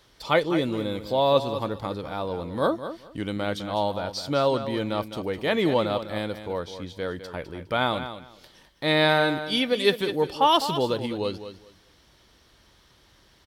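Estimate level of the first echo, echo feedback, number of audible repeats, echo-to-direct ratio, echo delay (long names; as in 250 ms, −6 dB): −11.0 dB, 19%, 2, −11.0 dB, 206 ms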